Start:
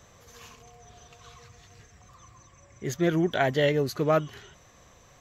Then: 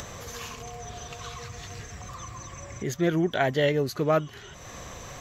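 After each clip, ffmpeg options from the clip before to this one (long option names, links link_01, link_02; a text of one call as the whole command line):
ffmpeg -i in.wav -af "acompressor=mode=upward:threshold=-27dB:ratio=2.5" out.wav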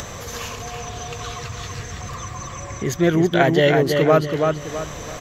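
ffmpeg -i in.wav -filter_complex "[0:a]asplit=2[link_01][link_02];[link_02]adelay=329,lowpass=frequency=4100:poles=1,volume=-4dB,asplit=2[link_03][link_04];[link_04]adelay=329,lowpass=frequency=4100:poles=1,volume=0.35,asplit=2[link_05][link_06];[link_06]adelay=329,lowpass=frequency=4100:poles=1,volume=0.35,asplit=2[link_07][link_08];[link_08]adelay=329,lowpass=frequency=4100:poles=1,volume=0.35[link_09];[link_01][link_03][link_05][link_07][link_09]amix=inputs=5:normalize=0,volume=7dB" out.wav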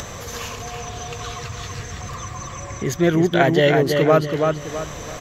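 ffmpeg -i in.wav -ar 48000 -c:a libvorbis -b:a 192k out.ogg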